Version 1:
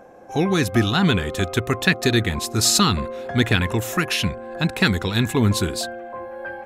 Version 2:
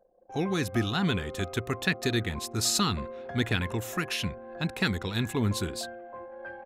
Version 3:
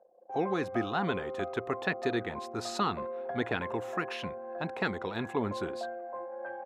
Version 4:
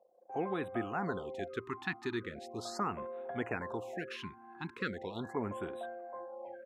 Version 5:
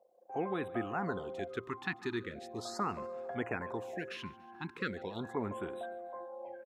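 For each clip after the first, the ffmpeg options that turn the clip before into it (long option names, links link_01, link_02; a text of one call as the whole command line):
ffmpeg -i in.wav -af "anlmdn=1.58,volume=-9dB" out.wav
ffmpeg -i in.wav -af "bandpass=frequency=710:width_type=q:width=1.1:csg=0,volume=4.5dB" out.wav
ffmpeg -i in.wav -af "afftfilt=real='re*(1-between(b*sr/1024,510*pow(5600/510,0.5+0.5*sin(2*PI*0.39*pts/sr))/1.41,510*pow(5600/510,0.5+0.5*sin(2*PI*0.39*pts/sr))*1.41))':imag='im*(1-between(b*sr/1024,510*pow(5600/510,0.5+0.5*sin(2*PI*0.39*pts/sr))/1.41,510*pow(5600/510,0.5+0.5*sin(2*PI*0.39*pts/sr))*1.41))':win_size=1024:overlap=0.75,volume=-5dB" out.wav
ffmpeg -i in.wav -af "aecho=1:1:143|286|429|572:0.0794|0.0421|0.0223|0.0118" out.wav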